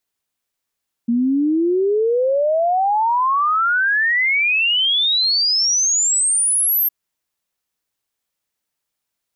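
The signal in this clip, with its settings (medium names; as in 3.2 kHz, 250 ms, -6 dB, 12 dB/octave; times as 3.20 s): log sweep 230 Hz -> 13 kHz 5.81 s -14 dBFS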